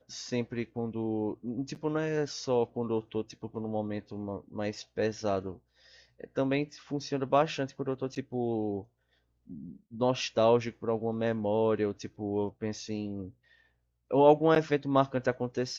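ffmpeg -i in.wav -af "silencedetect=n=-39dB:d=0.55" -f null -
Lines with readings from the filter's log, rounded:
silence_start: 5.54
silence_end: 6.20 | silence_duration: 0.66
silence_start: 8.82
silence_end: 9.50 | silence_duration: 0.68
silence_start: 13.28
silence_end: 14.11 | silence_duration: 0.82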